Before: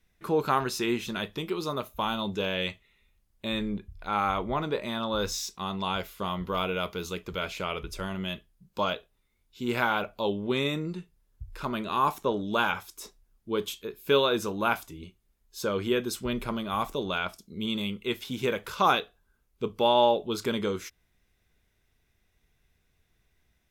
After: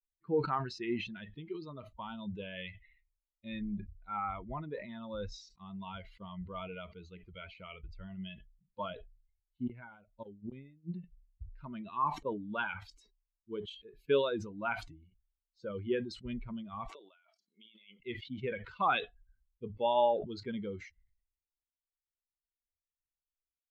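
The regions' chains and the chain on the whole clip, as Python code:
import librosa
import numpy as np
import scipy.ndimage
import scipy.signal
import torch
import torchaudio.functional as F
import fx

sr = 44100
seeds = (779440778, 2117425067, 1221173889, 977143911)

y = fx.chain(x, sr, fx.tilt_eq(slope=-1.5),
    fx.gate_flip(shuts_db=-19.0, range_db=-28), at=(8.9, 10.92))
y = fx.chain(y, sr, fx.highpass(hz=530.0, slope=12),
    fx.over_compress(threshold_db=-41.0, ratio=-1.0), at=(16.88, 18.0))
y = fx.bin_expand(y, sr, power=2.0)
y = scipy.signal.sosfilt(scipy.signal.bessel(4, 2300.0, 'lowpass', norm='mag', fs=sr, output='sos'), y)
y = fx.sustainer(y, sr, db_per_s=85.0)
y = y * librosa.db_to_amplitude(-3.0)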